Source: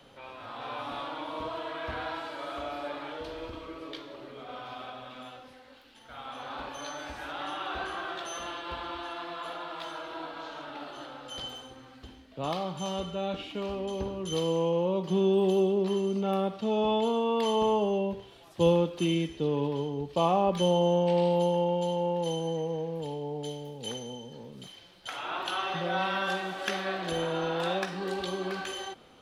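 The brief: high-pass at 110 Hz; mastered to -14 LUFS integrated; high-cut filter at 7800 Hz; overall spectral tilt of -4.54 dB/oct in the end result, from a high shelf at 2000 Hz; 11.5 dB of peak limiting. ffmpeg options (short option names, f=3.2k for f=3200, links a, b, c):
-af "highpass=110,lowpass=7.8k,highshelf=f=2k:g=-6.5,volume=21.5dB,alimiter=limit=-3.5dB:level=0:latency=1"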